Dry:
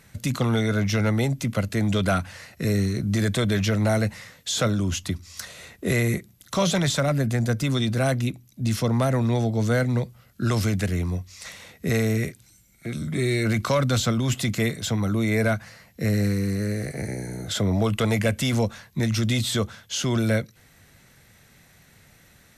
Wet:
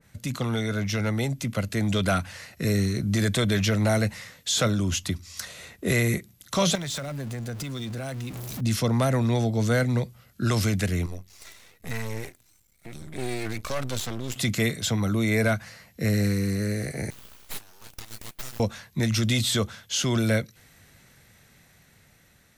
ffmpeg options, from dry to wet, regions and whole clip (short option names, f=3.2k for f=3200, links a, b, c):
-filter_complex "[0:a]asettb=1/sr,asplit=3[a][b][c];[a]atrim=end=6.754[d];[b]atrim=start=6.75:end=8.61,asetpts=PTS-STARTPTS,afade=t=in:d=0.004:c=qsin,afade=t=out:st=1.856:d=0.004:c=qsin,aeval=exprs='val(0)+0.5*0.0335*sgn(val(0))':c=same,acompressor=threshold=-30dB:ratio=6:attack=3.2:release=140:knee=1:detection=peak[e];[c]atrim=start=8.606[f];[d][e]acrossfade=d=0.004:c1=hsin:c2=qsin[g];[g][f]acrossfade=d=0.004:c1=qsin:c2=hsin,asettb=1/sr,asplit=3[h][i][j];[h]atrim=end=11.064[k];[i]atrim=start=11.06:end=14.36,asetpts=PTS-STARTPTS,afade=t=in:d=0.004:c=qsin,afade=t=out:st=3.296:d=0.004:c=qsin,highshelf=f=9.2k:g=5,flanger=delay=1.5:depth=1.5:regen=34:speed=1.1:shape=sinusoidal,aeval=exprs='max(val(0),0)':c=same[l];[j]atrim=start=14.356[m];[k][l]acrossfade=d=0.004:c1=hsin:c2=qsin[n];[n][m]acrossfade=d=0.004:c1=qsin:c2=hsin,asettb=1/sr,asplit=3[o][p][q];[o]atrim=end=17.104[r];[p]atrim=start=17.1:end=18.6,asetpts=PTS-STARTPTS,afade=t=in:d=0.004:c=qsin,afade=t=out:st=1.496:d=0.004:c=qsin,aderivative,aeval=exprs='abs(val(0))':c=same[s];[q]atrim=start=18.596[t];[r][s]acrossfade=d=0.004:c1=hsin:c2=qsin[u];[u][t]acrossfade=d=0.004:c1=qsin:c2=hsin,dynaudnorm=f=470:g=7:m=4dB,adynamicequalizer=threshold=0.02:dfrequency=1800:dqfactor=0.7:tfrequency=1800:tqfactor=0.7:attack=5:release=100:ratio=0.375:range=1.5:mode=boostabove:tftype=highshelf,volume=-5dB"